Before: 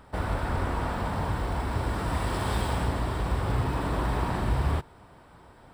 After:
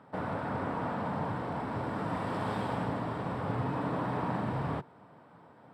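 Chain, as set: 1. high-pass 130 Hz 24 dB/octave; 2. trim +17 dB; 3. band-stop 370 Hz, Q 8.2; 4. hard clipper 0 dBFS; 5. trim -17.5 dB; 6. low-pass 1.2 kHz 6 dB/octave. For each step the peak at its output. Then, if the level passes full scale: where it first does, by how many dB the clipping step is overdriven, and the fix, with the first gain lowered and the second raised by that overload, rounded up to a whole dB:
-19.0 dBFS, -2.0 dBFS, -1.5 dBFS, -1.5 dBFS, -19.0 dBFS, -20.0 dBFS; nothing clips

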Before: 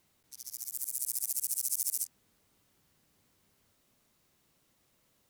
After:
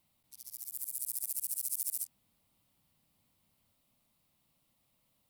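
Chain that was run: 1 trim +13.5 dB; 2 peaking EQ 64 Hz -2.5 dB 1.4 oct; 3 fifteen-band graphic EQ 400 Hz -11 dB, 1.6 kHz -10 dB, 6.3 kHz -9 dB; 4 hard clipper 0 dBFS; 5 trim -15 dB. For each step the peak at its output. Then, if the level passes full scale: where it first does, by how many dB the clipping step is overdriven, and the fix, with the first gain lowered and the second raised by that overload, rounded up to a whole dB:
-1.0 dBFS, -1.0 dBFS, -2.5 dBFS, -2.5 dBFS, -17.5 dBFS; nothing clips

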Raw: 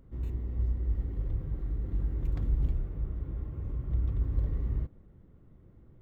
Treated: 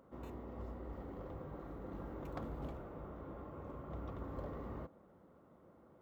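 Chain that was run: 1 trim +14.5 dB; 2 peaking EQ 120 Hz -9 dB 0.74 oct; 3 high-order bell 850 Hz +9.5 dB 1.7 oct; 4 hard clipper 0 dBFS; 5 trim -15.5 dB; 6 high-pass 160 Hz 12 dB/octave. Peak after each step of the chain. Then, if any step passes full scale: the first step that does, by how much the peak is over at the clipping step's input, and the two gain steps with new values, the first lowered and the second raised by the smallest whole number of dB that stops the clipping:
-2.5 dBFS, -3.5 dBFS, -3.5 dBFS, -3.5 dBFS, -19.0 dBFS, -31.5 dBFS; nothing clips

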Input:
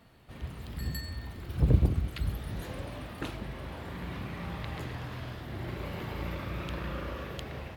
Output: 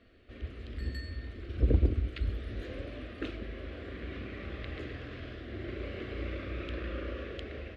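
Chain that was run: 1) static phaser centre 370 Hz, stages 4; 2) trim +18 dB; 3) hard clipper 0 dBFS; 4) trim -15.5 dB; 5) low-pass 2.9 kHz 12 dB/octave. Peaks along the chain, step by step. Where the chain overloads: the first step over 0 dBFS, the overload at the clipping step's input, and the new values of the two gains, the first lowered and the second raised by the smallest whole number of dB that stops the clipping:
-14.5 dBFS, +3.5 dBFS, 0.0 dBFS, -15.5 dBFS, -15.5 dBFS; step 2, 3.5 dB; step 2 +14 dB, step 4 -11.5 dB

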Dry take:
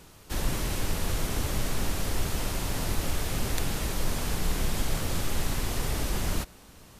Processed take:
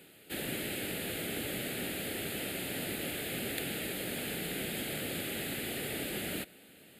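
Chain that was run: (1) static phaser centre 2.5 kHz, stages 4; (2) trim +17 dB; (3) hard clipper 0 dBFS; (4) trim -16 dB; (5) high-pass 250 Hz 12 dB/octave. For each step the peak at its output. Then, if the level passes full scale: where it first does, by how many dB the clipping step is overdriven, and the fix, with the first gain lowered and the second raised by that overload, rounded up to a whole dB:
-14.0 dBFS, +3.0 dBFS, 0.0 dBFS, -16.0 dBFS, -19.5 dBFS; step 2, 3.0 dB; step 2 +14 dB, step 4 -13 dB

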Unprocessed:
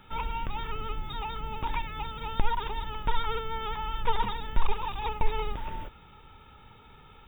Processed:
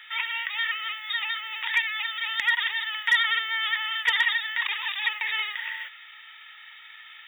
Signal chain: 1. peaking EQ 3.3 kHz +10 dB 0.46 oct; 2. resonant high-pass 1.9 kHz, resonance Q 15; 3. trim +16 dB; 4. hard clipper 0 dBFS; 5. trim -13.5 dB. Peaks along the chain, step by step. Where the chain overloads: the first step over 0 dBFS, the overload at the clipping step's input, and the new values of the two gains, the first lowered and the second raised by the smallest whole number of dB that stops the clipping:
-11.0 dBFS, -11.0 dBFS, +5.0 dBFS, 0.0 dBFS, -13.5 dBFS; step 3, 5.0 dB; step 3 +11 dB, step 5 -8.5 dB

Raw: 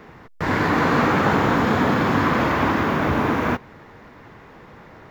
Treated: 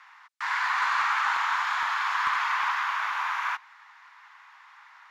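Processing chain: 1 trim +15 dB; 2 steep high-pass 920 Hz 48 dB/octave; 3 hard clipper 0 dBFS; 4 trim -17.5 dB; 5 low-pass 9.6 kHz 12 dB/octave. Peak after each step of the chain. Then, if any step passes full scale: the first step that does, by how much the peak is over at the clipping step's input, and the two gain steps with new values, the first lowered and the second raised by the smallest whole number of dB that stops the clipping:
+9.5 dBFS, +4.5 dBFS, 0.0 dBFS, -17.5 dBFS, -17.0 dBFS; step 1, 4.5 dB; step 1 +10 dB, step 4 -12.5 dB

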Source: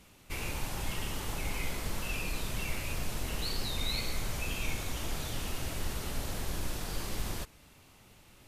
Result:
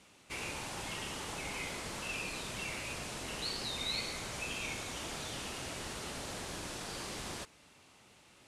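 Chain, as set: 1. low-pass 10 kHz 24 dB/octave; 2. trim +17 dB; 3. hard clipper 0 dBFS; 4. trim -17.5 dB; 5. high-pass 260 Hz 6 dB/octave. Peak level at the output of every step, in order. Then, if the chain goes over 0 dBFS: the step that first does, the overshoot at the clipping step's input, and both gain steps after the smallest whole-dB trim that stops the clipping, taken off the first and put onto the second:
-20.0 dBFS, -3.0 dBFS, -3.0 dBFS, -20.5 dBFS, -25.0 dBFS; nothing clips

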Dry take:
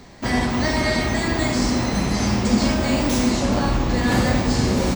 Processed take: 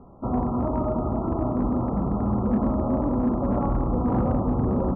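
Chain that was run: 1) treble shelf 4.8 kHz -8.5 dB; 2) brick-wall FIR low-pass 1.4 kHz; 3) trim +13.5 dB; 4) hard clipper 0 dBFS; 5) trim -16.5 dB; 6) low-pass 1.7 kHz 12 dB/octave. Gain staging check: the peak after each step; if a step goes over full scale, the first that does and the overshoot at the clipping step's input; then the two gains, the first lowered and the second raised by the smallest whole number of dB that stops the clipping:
-7.5 dBFS, -8.0 dBFS, +5.5 dBFS, 0.0 dBFS, -16.5 dBFS, -16.0 dBFS; step 3, 5.5 dB; step 3 +7.5 dB, step 5 -10.5 dB

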